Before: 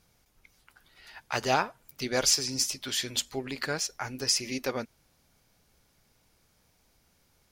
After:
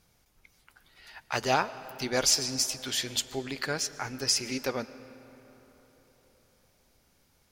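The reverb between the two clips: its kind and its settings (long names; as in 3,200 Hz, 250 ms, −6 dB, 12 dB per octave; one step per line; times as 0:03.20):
comb and all-pass reverb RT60 4.3 s, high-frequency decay 0.55×, pre-delay 80 ms, DRR 15 dB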